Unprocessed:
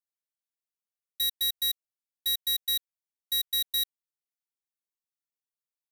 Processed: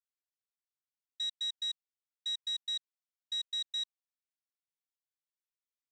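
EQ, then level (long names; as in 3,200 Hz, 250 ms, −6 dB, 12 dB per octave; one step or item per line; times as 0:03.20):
Chebyshev high-pass with heavy ripple 1,000 Hz, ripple 3 dB
elliptic low-pass filter 8,400 Hz, stop band 40 dB
−6.0 dB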